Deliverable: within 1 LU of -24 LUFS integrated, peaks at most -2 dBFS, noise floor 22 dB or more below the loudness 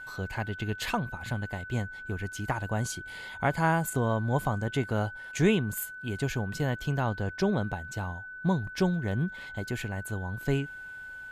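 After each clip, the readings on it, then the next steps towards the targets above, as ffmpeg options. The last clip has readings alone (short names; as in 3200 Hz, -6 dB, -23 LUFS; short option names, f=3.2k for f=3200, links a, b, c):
steady tone 1500 Hz; tone level -40 dBFS; loudness -31.0 LUFS; peak -11.5 dBFS; loudness target -24.0 LUFS
-> -af "bandreject=f=1.5k:w=30"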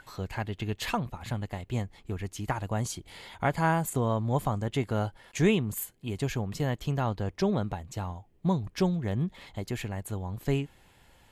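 steady tone none; loudness -31.0 LUFS; peak -11.5 dBFS; loudness target -24.0 LUFS
-> -af "volume=7dB"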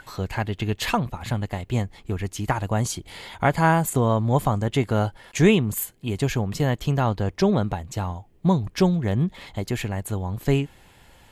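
loudness -24.0 LUFS; peak -4.5 dBFS; noise floor -53 dBFS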